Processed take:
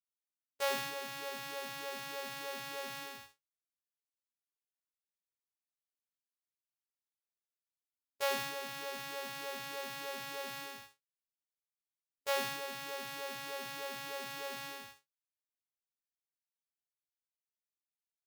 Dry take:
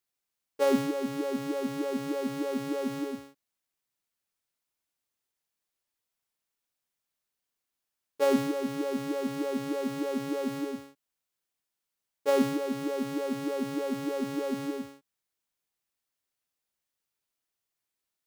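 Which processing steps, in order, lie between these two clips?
gate with hold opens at -32 dBFS; amplifier tone stack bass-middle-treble 10-0-10; early reflections 18 ms -3 dB, 71 ms -9 dB; trim +1.5 dB

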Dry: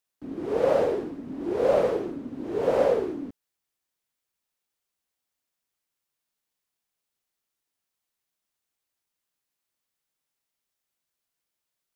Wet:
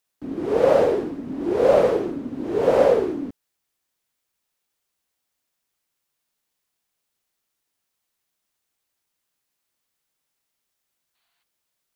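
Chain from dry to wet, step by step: time-frequency box 11.15–11.43 s, 650–4700 Hz +10 dB; trim +5.5 dB

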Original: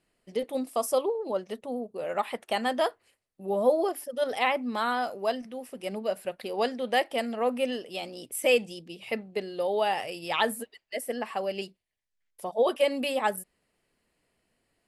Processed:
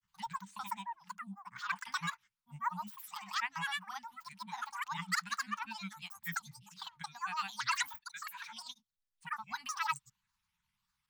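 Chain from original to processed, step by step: wide varispeed 1.34×; granulator, pitch spread up and down by 12 st; Chebyshev band-stop 200–910 Hz, order 4; trim -5.5 dB

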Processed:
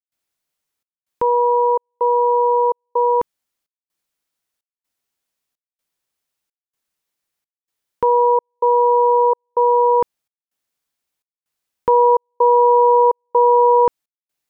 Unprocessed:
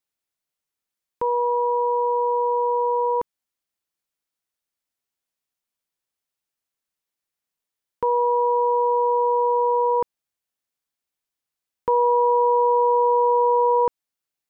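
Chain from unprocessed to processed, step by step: trance gate ".xxxxxx." 127 bpm -60 dB; trim +6 dB

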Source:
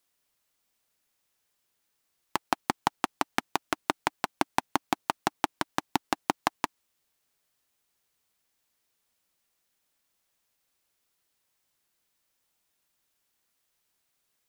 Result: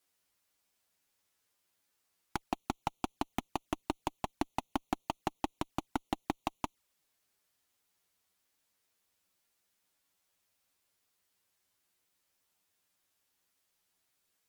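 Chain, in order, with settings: touch-sensitive flanger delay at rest 11.1 ms, full sweep at -32.5 dBFS; valve stage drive 24 dB, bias 0.35; trim +2.5 dB

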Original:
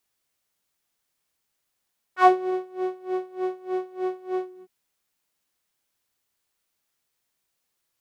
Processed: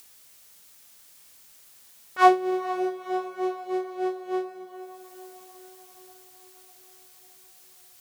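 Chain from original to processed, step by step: treble shelf 3.4 kHz +8 dB; upward compressor, threshold -38 dBFS; echo that smears into a reverb 486 ms, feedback 62%, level -13 dB

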